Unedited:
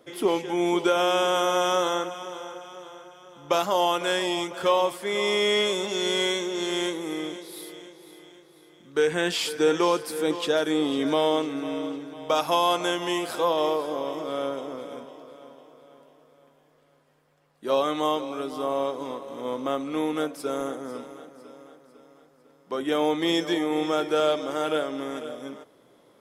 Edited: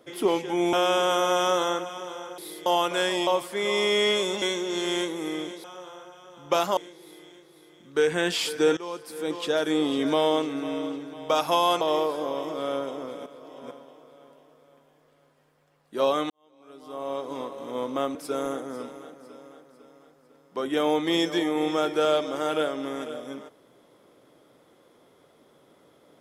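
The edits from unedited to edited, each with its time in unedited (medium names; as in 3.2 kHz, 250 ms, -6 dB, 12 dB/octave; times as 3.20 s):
0.73–0.98 s: delete
2.63–3.76 s: swap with 7.49–7.77 s
4.37–4.77 s: delete
5.92–6.27 s: delete
9.77–10.72 s: fade in, from -18 dB
12.81–13.51 s: delete
14.96–15.41 s: reverse
18.00–19.08 s: fade in quadratic
19.85–20.30 s: delete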